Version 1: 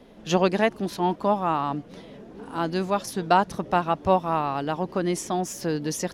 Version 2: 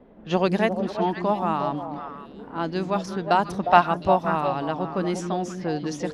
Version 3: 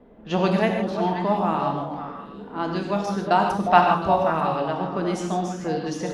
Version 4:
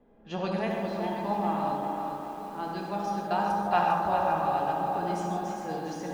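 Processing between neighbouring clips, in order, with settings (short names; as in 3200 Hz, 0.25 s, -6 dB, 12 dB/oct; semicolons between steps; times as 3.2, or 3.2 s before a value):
spectral gain 3.63–3.86, 560–5300 Hz +9 dB; low-pass opened by the level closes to 1400 Hz, open at -18 dBFS; delay with a stepping band-pass 0.178 s, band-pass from 220 Hz, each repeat 1.4 oct, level -2 dB; gain -1 dB
non-linear reverb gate 0.18 s flat, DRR 2 dB; gain -1 dB
resonator 820 Hz, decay 0.16 s, harmonics all, mix 80%; analogue delay 74 ms, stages 1024, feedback 79%, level -6.5 dB; lo-fi delay 0.402 s, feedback 55%, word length 9-bit, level -7.5 dB; gain +2 dB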